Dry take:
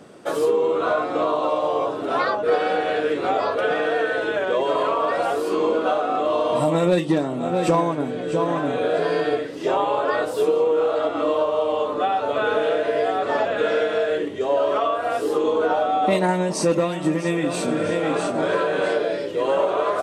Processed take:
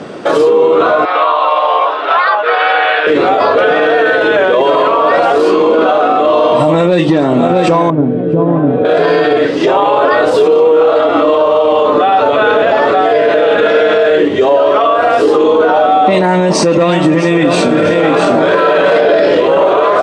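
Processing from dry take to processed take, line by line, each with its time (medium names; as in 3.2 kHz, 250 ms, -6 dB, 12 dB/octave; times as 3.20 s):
1.05–3.07 s: Butterworth band-pass 1.8 kHz, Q 0.64
7.90–8.85 s: band-pass filter 140 Hz, Q 0.74
12.62–13.55 s: reverse
18.61–19.37 s: reverb throw, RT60 0.86 s, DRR -10 dB
whole clip: low-pass 4.9 kHz 12 dB/octave; bass shelf 72 Hz -9 dB; loudness maximiser +20.5 dB; trim -1 dB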